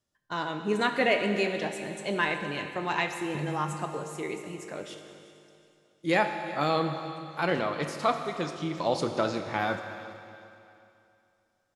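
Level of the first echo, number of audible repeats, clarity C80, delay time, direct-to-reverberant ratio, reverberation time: -17.5 dB, 2, 7.0 dB, 0.373 s, 5.5 dB, 2.7 s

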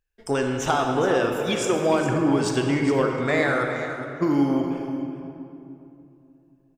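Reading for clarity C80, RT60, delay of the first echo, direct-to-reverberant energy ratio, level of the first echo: 3.5 dB, 2.8 s, 0.414 s, 2.0 dB, -11.5 dB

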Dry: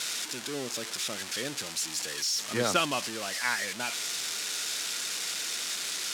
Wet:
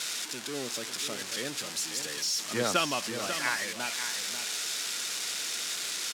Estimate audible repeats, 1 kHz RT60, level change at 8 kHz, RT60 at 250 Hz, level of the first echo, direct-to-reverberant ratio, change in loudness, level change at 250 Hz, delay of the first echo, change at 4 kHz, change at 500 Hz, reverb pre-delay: 2, none, -0.5 dB, none, -9.0 dB, none, -0.5 dB, -0.5 dB, 0.543 s, -0.5 dB, -0.5 dB, none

